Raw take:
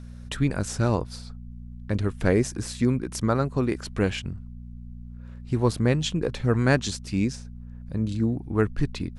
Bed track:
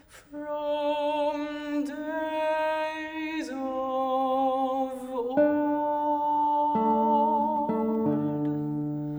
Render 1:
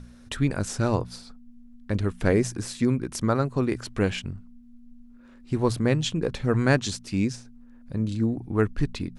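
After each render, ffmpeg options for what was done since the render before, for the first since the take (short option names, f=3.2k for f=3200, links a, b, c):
-af "bandreject=f=60:t=h:w=4,bandreject=f=120:t=h:w=4,bandreject=f=180:t=h:w=4"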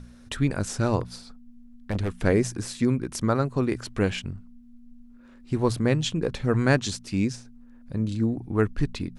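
-filter_complex "[0:a]asettb=1/sr,asplit=3[a][b][c];[a]atrim=end=1.014[d];[b]atrim=start=1.01:end=2.17,asetpts=PTS-STARTPTS,afade=t=in:d=0.004:c=qsin,afade=t=out:st=1.156:d=0.004:c=qsin,aeval=exprs='0.106*(abs(mod(val(0)/0.106+3,4)-2)-1)':c=same[e];[c]atrim=start=2.166[f];[d][e]acrossfade=d=0.004:c1=hsin:c2=qsin[g];[g][f]acrossfade=d=0.004:c1=qsin:c2=hsin"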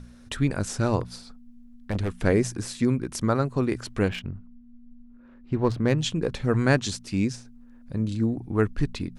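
-filter_complex "[0:a]asettb=1/sr,asplit=3[a][b][c];[a]atrim=end=4.084[d];[b]atrim=start=4.08:end=5.98,asetpts=PTS-STARTPTS,afade=t=in:d=0.004:c=qsin,afade=t=out:st=1.896:d=0.004:c=qsin,adynamicsmooth=sensitivity=3:basefreq=2.5k[e];[c]atrim=start=5.976[f];[d][e]acrossfade=d=0.004:c1=hsin:c2=qsin[g];[g][f]acrossfade=d=0.004:c1=qsin:c2=hsin"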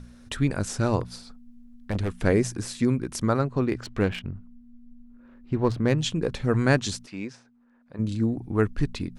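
-filter_complex "[0:a]asettb=1/sr,asplit=3[a][b][c];[a]atrim=end=3.394[d];[b]atrim=start=3.39:end=4.26,asetpts=PTS-STARTPTS,afade=t=in:d=0.004:c=qsin,afade=t=out:st=0.866:d=0.004:c=qsin,adynamicsmooth=sensitivity=5:basefreq=4.9k[e];[c]atrim=start=4.256[f];[d][e]acrossfade=d=0.004:c1=hsin:c2=qsin[g];[g][f]acrossfade=d=0.004:c1=qsin:c2=hsin,asplit=3[h][i][j];[h]afade=t=out:st=7.05:d=0.02[k];[i]bandpass=f=1.1k:t=q:w=0.67,afade=t=in:st=7.05:d=0.02,afade=t=out:st=7.98:d=0.02[l];[j]afade=t=in:st=7.98:d=0.02[m];[k][l][m]amix=inputs=3:normalize=0"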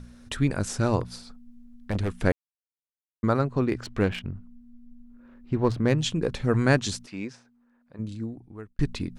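-filter_complex "[0:a]asplit=4[a][b][c][d];[a]atrim=end=2.32,asetpts=PTS-STARTPTS,afade=t=out:st=2.316:d=0.004:c=hsin[e];[b]atrim=start=2.32:end=3.23,asetpts=PTS-STARTPTS,volume=0[f];[c]atrim=start=3.23:end=8.79,asetpts=PTS-STARTPTS,afade=t=in:d=0.004:c=hsin,afade=t=out:st=4.01:d=1.55[g];[d]atrim=start=8.79,asetpts=PTS-STARTPTS,afade=t=in:d=0.004:c=hsin[h];[e][f][g][h]concat=n=4:v=0:a=1"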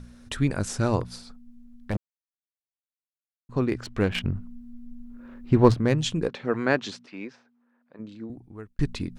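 -filter_complex "[0:a]asettb=1/sr,asplit=3[a][b][c];[a]atrim=end=6.284[d];[b]atrim=start=6.28:end=8.3,asetpts=PTS-STARTPTS,afade=t=in:d=0.004:c=qsin,afade=t=out:st=2.016:d=0.004:c=qsin,highpass=260,lowpass=3.6k[e];[c]atrim=start=8.296[f];[d][e]acrossfade=d=0.004:c1=hsin:c2=qsin[g];[g][f]acrossfade=d=0.004:c1=qsin:c2=hsin,asplit=5[h][i][j][k][l];[h]atrim=end=1.97,asetpts=PTS-STARTPTS,afade=t=out:st=1.966:d=0.004:c=hsin[m];[i]atrim=start=1.97:end=3.49,asetpts=PTS-STARTPTS,volume=0[n];[j]atrim=start=3.49:end=4.152,asetpts=PTS-STARTPTS,afade=t=in:d=0.004:c=hsin[o];[k]atrim=start=4.148:end=5.742,asetpts=PTS-STARTPTS,volume=7dB[p];[l]atrim=start=5.738[q];[m][n][o]concat=n=3:v=0:a=1[r];[r][p]acrossfade=d=0.004:c1=hsin:c2=hsin[s];[s][q]acrossfade=d=0.004:c1=hsin:c2=hsin"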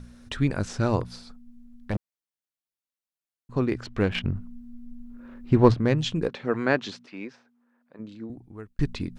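-filter_complex "[0:a]acrossover=split=6200[a][b];[b]acompressor=threshold=-59dB:ratio=4:attack=1:release=60[c];[a][c]amix=inputs=2:normalize=0"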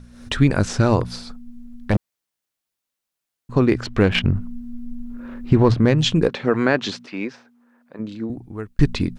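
-af "alimiter=limit=-14.5dB:level=0:latency=1:release=109,dynaudnorm=f=110:g=3:m=10dB"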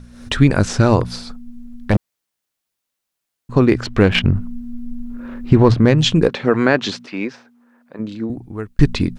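-af "volume=3.5dB"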